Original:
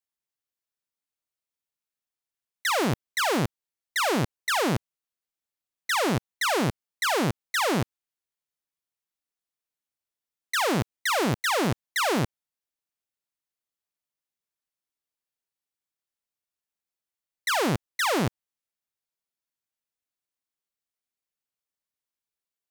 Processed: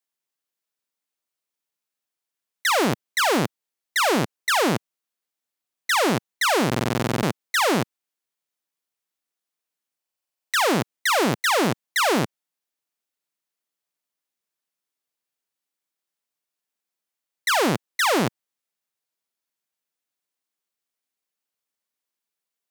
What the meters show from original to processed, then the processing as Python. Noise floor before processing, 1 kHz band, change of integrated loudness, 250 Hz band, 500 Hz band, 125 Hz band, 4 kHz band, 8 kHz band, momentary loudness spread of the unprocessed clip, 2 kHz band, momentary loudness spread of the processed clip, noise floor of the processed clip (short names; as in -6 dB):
under -85 dBFS, +4.5 dB, +4.0 dB, +3.5 dB, +4.5 dB, +0.5 dB, +4.5 dB, +4.5 dB, 6 LU, +4.5 dB, 6 LU, under -85 dBFS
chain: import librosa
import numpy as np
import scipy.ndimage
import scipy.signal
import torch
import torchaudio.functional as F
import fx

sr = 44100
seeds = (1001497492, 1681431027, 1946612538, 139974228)

y = scipy.signal.sosfilt(scipy.signal.butter(2, 170.0, 'highpass', fs=sr, output='sos'), x)
y = fx.buffer_glitch(y, sr, at_s=(6.67, 9.98), block=2048, repeats=11)
y = F.gain(torch.from_numpy(y), 4.5).numpy()